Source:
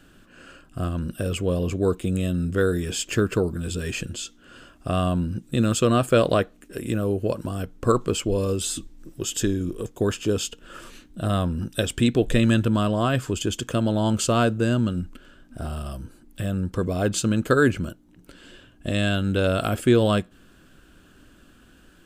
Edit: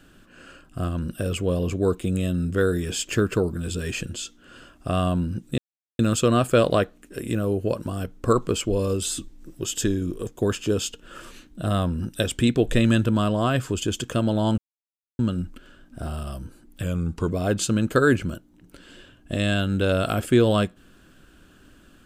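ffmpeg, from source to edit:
ffmpeg -i in.wav -filter_complex "[0:a]asplit=6[link_01][link_02][link_03][link_04][link_05][link_06];[link_01]atrim=end=5.58,asetpts=PTS-STARTPTS,afade=type=out:start_time=5.576:duration=0.004:curve=hsin,apad=pad_dur=0.41[link_07];[link_02]atrim=start=5.58:end=14.17,asetpts=PTS-STARTPTS,afade=type=in:duration=0.004:curve=hsin,afade=type=out:start_time=8.586:duration=0.004:curve=hsin[link_08];[link_03]atrim=start=14.17:end=14.78,asetpts=PTS-STARTPTS,volume=0[link_09];[link_04]atrim=start=14.78:end=16.424,asetpts=PTS-STARTPTS,afade=type=in:duration=0.004:curve=hsin[link_10];[link_05]atrim=start=16.42:end=16.84,asetpts=PTS-STARTPTS,asetrate=40131,aresample=44100[link_11];[link_06]atrim=start=16.836[link_12];[link_07][link_08][link_09][link_10]concat=n=4:v=0:a=1[link_13];[link_13][link_11]acrossfade=duration=0.004:curve1=hsin:curve2=hsin[link_14];[link_14][link_12]acrossfade=duration=0.004:curve1=hsin:curve2=hsin" out.wav

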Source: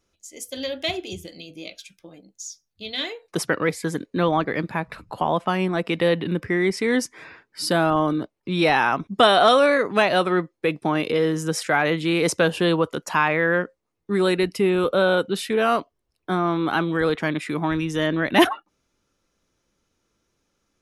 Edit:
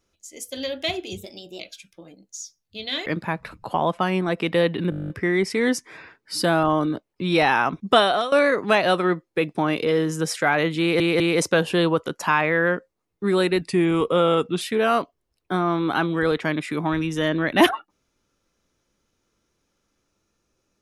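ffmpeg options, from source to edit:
ffmpeg -i in.wav -filter_complex "[0:a]asplit=19[link_01][link_02][link_03][link_04][link_05][link_06][link_07][link_08][link_09][link_10][link_11][link_12][link_13][link_14][link_15][link_16][link_17][link_18][link_19];[link_01]atrim=end=1.174[link_20];[link_02]atrim=start=1.17:end=1.66,asetpts=PTS-STARTPTS,asetrate=50274,aresample=44100,atrim=end_sample=18955,asetpts=PTS-STARTPTS[link_21];[link_03]atrim=start=1.656:end=3.122[link_22];[link_04]atrim=start=4.528:end=6.392[link_23];[link_05]atrim=start=6.368:end=6.392[link_24];[link_06]atrim=start=6.368:end=6.392[link_25];[link_07]atrim=start=6.368:end=6.392[link_26];[link_08]atrim=start=6.368:end=6.392[link_27];[link_09]atrim=start=6.368:end=6.392[link_28];[link_10]atrim=start=6.368:end=6.392[link_29];[link_11]atrim=start=6.368:end=6.392[link_30];[link_12]atrim=start=6.368:end=6.392[link_31];[link_13]atrim=start=6.368:end=6.392[link_32];[link_14]atrim=start=6.368:end=9.59,asetpts=PTS-STARTPTS,afade=type=out:start_time=2.842:duration=0.38:silence=0.125893[link_33];[link_15]atrim=start=9.59:end=12.272,asetpts=PTS-STARTPTS,afade=type=in:duration=0.004:curve=hsin:silence=0.125893[link_34];[link_16]atrim=start=12.068:end=12.272[link_35];[link_17]atrim=start=12.068:end=14.484[link_36];[link_18]atrim=start=14.48:end=15.39,asetpts=PTS-STARTPTS,asetrate=40131,aresample=44100[link_37];[link_19]atrim=start=15.386[link_38];[link_20][link_21]acrossfade=duration=0.004:curve1=hsin:curve2=hsin[link_39];[link_39][link_22]acrossfade=duration=0.004:curve1=hsin:curve2=hsin[link_40];[link_40][link_23]acrossfade=duration=0.004:curve1=hsin:curve2=hsin[link_41];[link_41][link_24]acrossfade=duration=0.004:curve1=hsin:curve2=hsin[link_42];[link_42][link_25]acrossfade=duration=0.004:curve1=hsin:curve2=hsin[link_43];[link_43][link_26]acrossfade=duration=0.004:curve1=hsin:curve2=hsin[link_44];[link_44][link_27]acrossfade=duration=0.004:curve1=hsin:curve2=hsin[link_45];[link_45][link_28]acrossfade=duration=0.004:curve1=hsin:curve2=hsin[link_46];[link_46][link_29]acrossfade=duration=0.004:curve1=hsin:curve2=hsin[link_47];[link_47][link_30]acrossfade=duration=0.004:curve1=hsin:curve2=hsin[link_48];[link_48][link_31]acrossfade=duration=0.004:curve1=hsin:curve2=hsin[link_49];[link_49][link_32]acrossfade=duration=0.004:curve1=hsin:curve2=hsin[link_50];[link_33][link_34]concat=n=2:v=0:a=1[link_51];[link_50][link_51]acrossfade=duration=0.004:curve1=hsin:curve2=hsin[link_52];[link_52][link_35]acrossfade=duration=0.004:curve1=hsin:curve2=hsin[link_53];[link_53][link_36]acrossfade=duration=0.004:curve1=hsin:curve2=hsin[link_54];[link_54][link_37]acrossfade=duration=0.004:curve1=hsin:curve2=hsin[link_55];[link_55][link_38]acrossfade=duration=0.004:curve1=hsin:curve2=hsin" out.wav

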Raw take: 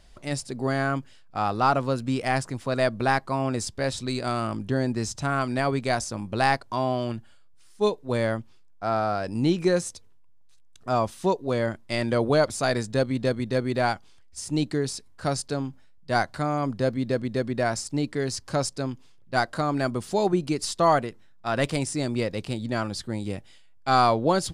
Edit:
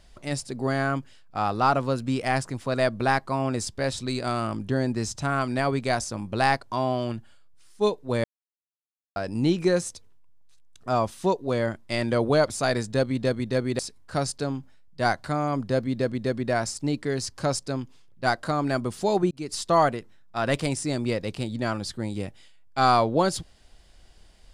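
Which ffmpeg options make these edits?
ffmpeg -i in.wav -filter_complex "[0:a]asplit=5[link_01][link_02][link_03][link_04][link_05];[link_01]atrim=end=8.24,asetpts=PTS-STARTPTS,afade=type=out:start_time=8.236:duration=0.004:curve=hsin[link_06];[link_02]atrim=start=8.24:end=9.16,asetpts=PTS-STARTPTS,volume=0[link_07];[link_03]atrim=start=9.16:end=13.792,asetpts=PTS-STARTPTS,afade=type=in:duration=0.004:curve=hsin[link_08];[link_04]atrim=start=14.888:end=20.41,asetpts=PTS-STARTPTS,afade=type=out:start_time=5.518:duration=0.004:curve=hsin[link_09];[link_05]atrim=start=20.41,asetpts=PTS-STARTPTS,afade=type=in:duration=0.42:curve=qsin[link_10];[link_06][link_07][link_08]concat=n=3:v=0:a=1[link_11];[link_09][link_10]concat=n=2:v=0:a=1[link_12];[link_11][link_12]acrossfade=duration=0.004:curve1=hsin:curve2=hsin" out.wav

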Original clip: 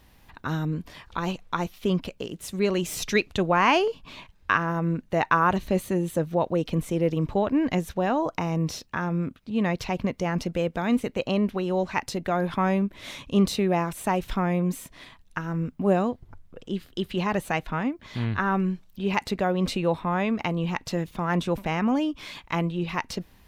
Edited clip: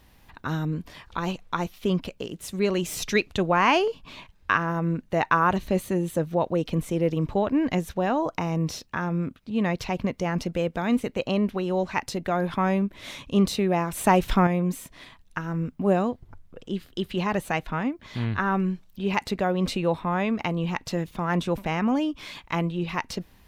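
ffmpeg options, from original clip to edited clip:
ffmpeg -i in.wav -filter_complex "[0:a]asplit=3[link_01][link_02][link_03];[link_01]atrim=end=13.932[link_04];[link_02]atrim=start=13.928:end=14.472,asetpts=PTS-STARTPTS,volume=6dB[link_05];[link_03]atrim=start=14.468[link_06];[link_04][link_05]acrossfade=duration=0.004:curve1=hsin:curve2=hsin[link_07];[link_07][link_06]acrossfade=duration=0.004:curve1=hsin:curve2=hsin" out.wav

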